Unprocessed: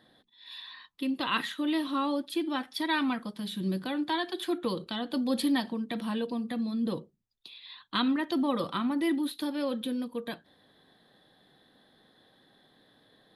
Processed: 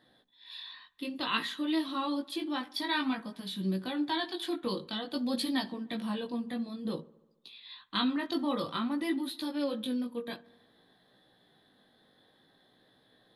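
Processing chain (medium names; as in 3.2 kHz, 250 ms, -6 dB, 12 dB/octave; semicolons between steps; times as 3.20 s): dynamic bell 4.4 kHz, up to +5 dB, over -49 dBFS, Q 1.7; chorus 0.54 Hz, delay 15.5 ms, depth 5.5 ms; feedback echo behind a low-pass 72 ms, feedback 65%, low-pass 1.9 kHz, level -22 dB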